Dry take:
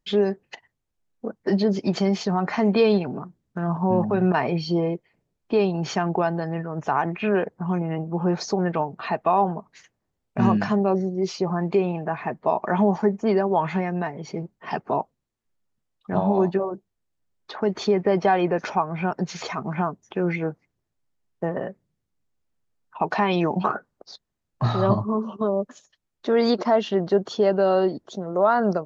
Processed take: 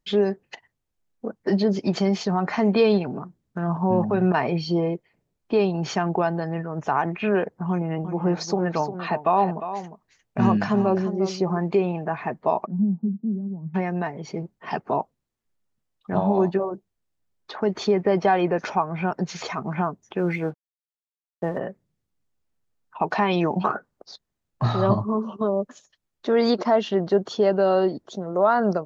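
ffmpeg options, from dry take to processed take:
-filter_complex "[0:a]asettb=1/sr,asplit=3[a][b][c];[a]atrim=end=7.694[d];[b]atrim=start=7.69:end=11.58,asetpts=PTS-STARTPTS,afade=t=in:d=0.004:c=qsin,afade=t=out:st=3.886:d=0.004:c=qsin,aecho=1:1:353:0.282,atrim=end_sample=171549[e];[c]atrim=start=11.576[f];[d][e]acrossfade=d=0.004:c1=hsin:c2=qsin[g];[g][f]acrossfade=d=0.004:c1=qsin:c2=hsin,asplit=3[h][i][j];[h]afade=t=out:st=12.65:d=0.02[k];[i]asuperpass=centerf=190:order=4:qfactor=2.1,afade=t=in:st=12.65:d=0.02,afade=t=out:st=13.74:d=0.02[l];[j]afade=t=in:st=13.74:d=0.02[m];[k][l][m]amix=inputs=3:normalize=0,asplit=3[n][o][p];[n]afade=t=out:st=20.17:d=0.02[q];[o]aeval=exprs='sgn(val(0))*max(abs(val(0))-0.00188,0)':c=same,afade=t=in:st=20.17:d=0.02,afade=t=out:st=21.57:d=0.02[r];[p]afade=t=in:st=21.57:d=0.02[s];[q][r][s]amix=inputs=3:normalize=0"

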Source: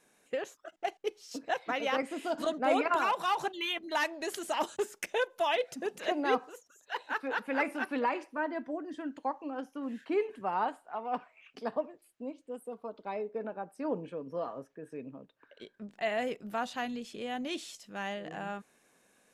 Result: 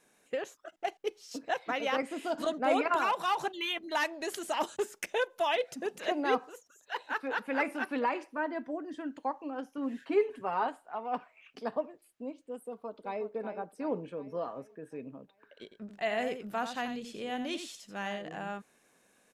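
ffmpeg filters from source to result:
-filter_complex "[0:a]asettb=1/sr,asplit=3[a][b][c];[a]atrim=end=9.774[d];[b]atrim=start=9.77:end=10.67,asetpts=PTS-STARTPTS,afade=t=in:d=0.004:c=qsin,afade=t=out:st=0.896:d=0.004:c=qsin,aecho=1:1:7.3:0.57,atrim=end_sample=39690[e];[c]atrim=start=10.666[f];[d][e]acrossfade=d=0.004:c1=hsin:c2=qsin[g];[g][f]acrossfade=d=0.004:c1=qsin:c2=hsin,asplit=2[h][i];[i]afade=t=in:st=12.65:d=0.01,afade=t=out:st=13.28:d=0.01,aecho=0:1:370|740|1110|1480|1850|2220:0.334965|0.184231|0.101327|0.0557299|0.0306514|0.0168583[j];[h][j]amix=inputs=2:normalize=0,asettb=1/sr,asplit=3[k][l][m];[k]atrim=end=15.634[n];[l]atrim=start=15.63:end=18.22,asetpts=PTS-STARTPTS,afade=t=in:d=0.004:c=qsin,afade=t=out:st=2.586:d=0.004:c=qsin,aecho=1:1:85:0.355,atrim=end_sample=114219[o];[m]atrim=start=18.216[p];[n][o]acrossfade=d=0.004:c1=hsin:c2=qsin[q];[q][p]acrossfade=d=0.004:c1=qsin:c2=hsin"

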